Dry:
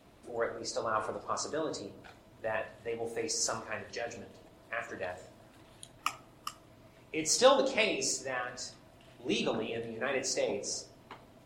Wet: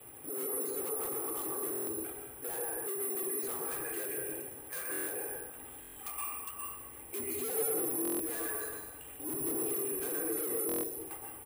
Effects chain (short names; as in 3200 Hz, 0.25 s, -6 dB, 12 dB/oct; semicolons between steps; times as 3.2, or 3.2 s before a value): mistuned SSB -69 Hz 150–3300 Hz; 0.89–1.63 negative-ratio compressor -39 dBFS, ratio -0.5; treble ducked by the level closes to 600 Hz, closed at -27.5 dBFS; comb 2.5 ms, depth 83%; vibrato 14 Hz 41 cents; careless resampling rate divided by 4×, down filtered, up zero stuff; on a send at -7.5 dB: reverb RT60 0.95 s, pre-delay 0.113 s; on the sum: soft clip -29.5 dBFS, distortion 0 dB; limiter -34 dBFS, peak gain reduction 4.5 dB; dynamic EQ 340 Hz, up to +5 dB, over -57 dBFS, Q 1.4; stuck buffer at 1.71/4.91/5.8/8.03/10.67, samples 1024, times 6; gain +3 dB